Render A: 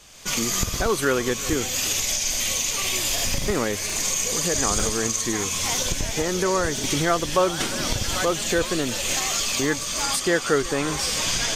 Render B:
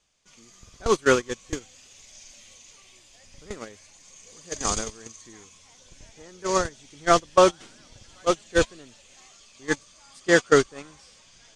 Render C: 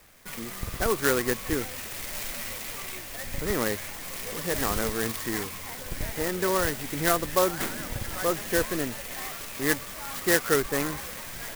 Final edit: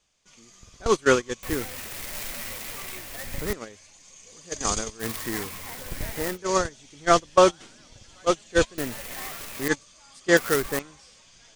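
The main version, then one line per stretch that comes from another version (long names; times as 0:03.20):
B
0:01.43–0:03.53: punch in from C
0:05.02–0:06.35: punch in from C, crossfade 0.06 s
0:08.78–0:09.68: punch in from C
0:10.37–0:10.79: punch in from C
not used: A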